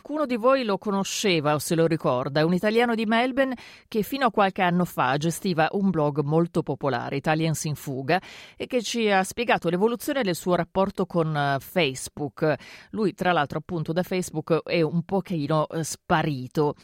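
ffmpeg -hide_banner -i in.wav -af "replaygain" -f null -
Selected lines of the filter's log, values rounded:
track_gain = +4.1 dB
track_peak = 0.306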